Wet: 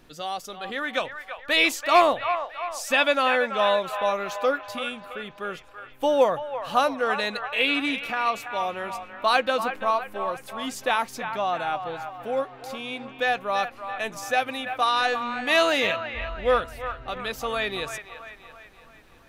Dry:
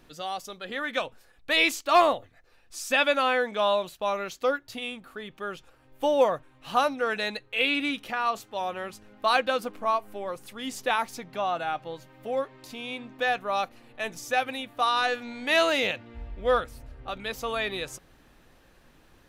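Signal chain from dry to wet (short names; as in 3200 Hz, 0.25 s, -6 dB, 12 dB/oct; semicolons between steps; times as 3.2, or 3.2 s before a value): band-limited delay 0.334 s, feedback 51%, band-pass 1300 Hz, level -7.5 dB; gain +2 dB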